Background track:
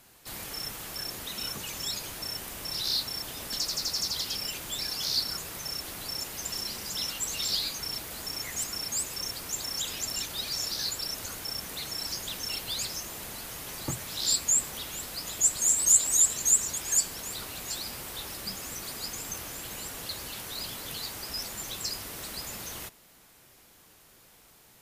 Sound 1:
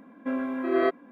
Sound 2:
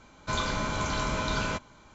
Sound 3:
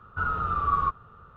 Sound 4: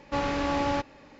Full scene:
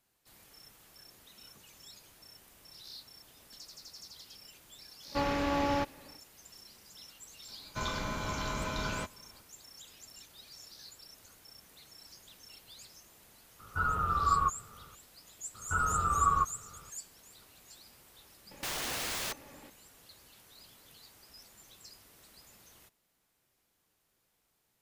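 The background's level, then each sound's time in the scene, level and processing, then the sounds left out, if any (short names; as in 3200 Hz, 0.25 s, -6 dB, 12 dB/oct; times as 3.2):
background track -19.5 dB
5.03 add 4 -3 dB, fades 0.10 s
7.48 add 2 -6 dB
13.59 add 3 -3 dB
15.54 add 3 -2.5 dB
18.51 add 4 -2 dB + wrapped overs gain 29.5 dB
not used: 1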